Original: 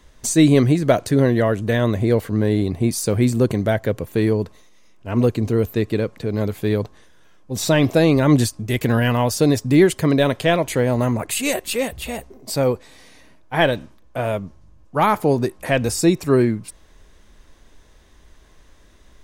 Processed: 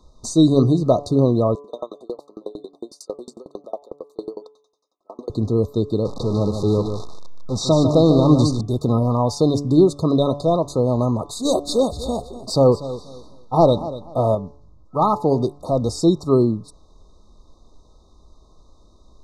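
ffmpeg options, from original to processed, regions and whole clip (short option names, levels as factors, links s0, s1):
-filter_complex "[0:a]asettb=1/sr,asplit=3[s0][s1][s2];[s0]atrim=end=1.554[s3];[s1]atrim=start=1.55:end=5.3,asetpts=PTS-STARTPTS,afade=t=in:d=0.004:c=qsin,afade=t=out:st=3.746:d=0.004:c=qsin,highpass=f=360:w=0.5412,highpass=f=360:w=1.3066,aeval=exprs='val(0)*pow(10,-38*if(lt(mod(11*n/s,1),2*abs(11)/1000),1-mod(11*n/s,1)/(2*abs(11)/1000),(mod(11*n/s,1)-2*abs(11)/1000)/(1-2*abs(11)/1000))/20)':c=same[s4];[s2]atrim=start=5.296[s5];[s3][s4]acrossfade=d=0.004:c1=hsin:c2=qsin[s6];[s6][s5]acrossfade=d=0.004:c1=qsin:c2=hsin,asettb=1/sr,asplit=3[s7][s8][s9];[s7]atrim=end=6.054[s10];[s8]atrim=start=6.05:end=8.61,asetpts=PTS-STARTPTS,afade=t=in:d=0.004:c=qsin,afade=t=out:st=2.556:d=0.004:c=qsin,aeval=exprs='val(0)+0.5*0.0596*sgn(val(0))':c=same,acrossover=split=9200[s11][s12];[s12]acompressor=threshold=0.00562:ratio=4:attack=1:release=60[s13];[s11][s13]amix=inputs=2:normalize=0,aecho=1:1:149:0.422,atrim=end_sample=112896[s14];[s9]atrim=start=8.606[s15];[s10][s14]acrossfade=d=0.004:c1=hsin:c2=qsin[s16];[s16][s15]acrossfade=d=0.004:c1=qsin:c2=hsin,asettb=1/sr,asplit=3[s17][s18][s19];[s17]atrim=end=11.454[s20];[s18]atrim=start=11.45:end=14.35,asetpts=PTS-STARTPTS,afade=t=in:d=0.004:c=qsin,afade=t=out:st=2.896:d=0.004:c=qsin,acontrast=30,aecho=1:1:242|484|726:0.178|0.0427|0.0102,atrim=end_sample=127890[s21];[s19]atrim=start=14.346[s22];[s20][s21]acrossfade=d=0.004:c1=hsin:c2=qsin[s23];[s23][s22]acrossfade=d=0.004:c1=qsin:c2=hsin,lowpass=5200,afftfilt=real='re*(1-between(b*sr/4096,1300,3600))':imag='im*(1-between(b*sr/4096,1300,3600))':win_size=4096:overlap=0.75,bandreject=f=143.5:t=h:w=4,bandreject=f=287:t=h:w=4,bandreject=f=430.5:t=h:w=4,bandreject=f=574:t=h:w=4,bandreject=f=717.5:t=h:w=4,bandreject=f=861:t=h:w=4,bandreject=f=1004.5:t=h:w=4,bandreject=f=1148:t=h:w=4"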